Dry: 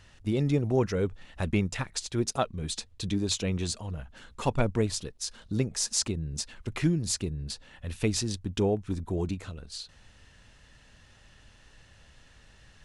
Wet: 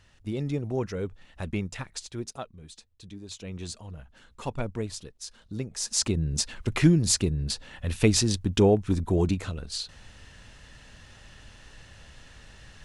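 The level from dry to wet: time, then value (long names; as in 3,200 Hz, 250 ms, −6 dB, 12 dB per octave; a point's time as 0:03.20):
0:02.00 −4 dB
0:02.70 −14 dB
0:03.23 −14 dB
0:03.66 −5.5 dB
0:05.68 −5.5 dB
0:06.18 +6.5 dB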